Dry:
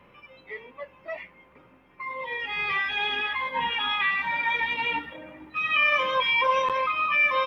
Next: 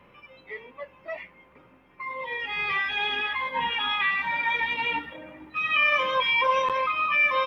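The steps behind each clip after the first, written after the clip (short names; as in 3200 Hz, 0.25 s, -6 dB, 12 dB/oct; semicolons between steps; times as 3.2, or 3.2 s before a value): nothing audible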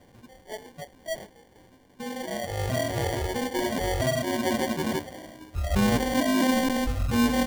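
sample-and-hold 34×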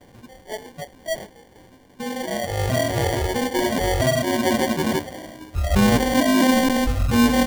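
gate with hold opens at -53 dBFS; gain +6 dB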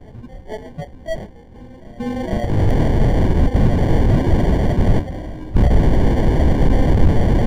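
wrapped overs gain 18.5 dB; RIAA curve playback; reverse echo 0.459 s -19 dB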